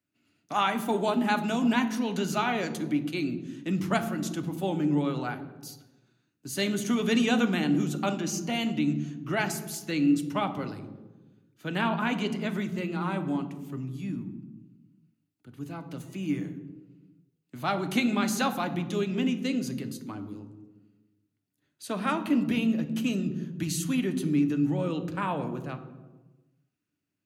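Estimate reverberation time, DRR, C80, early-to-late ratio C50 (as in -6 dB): 1.2 s, 7.5 dB, 13.5 dB, 11.5 dB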